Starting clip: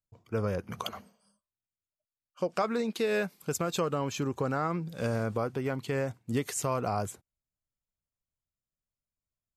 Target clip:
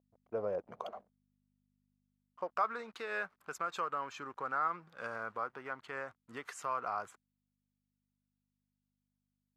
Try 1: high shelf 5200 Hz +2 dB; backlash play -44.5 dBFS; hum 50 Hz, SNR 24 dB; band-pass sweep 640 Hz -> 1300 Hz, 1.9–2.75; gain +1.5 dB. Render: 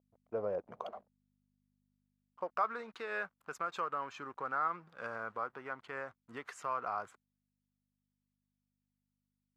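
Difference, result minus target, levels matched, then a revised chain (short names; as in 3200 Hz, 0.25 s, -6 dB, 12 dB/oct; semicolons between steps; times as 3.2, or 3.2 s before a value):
8000 Hz band -4.5 dB
high shelf 5200 Hz +9 dB; backlash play -44.5 dBFS; hum 50 Hz, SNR 24 dB; band-pass sweep 640 Hz -> 1300 Hz, 1.9–2.75; gain +1.5 dB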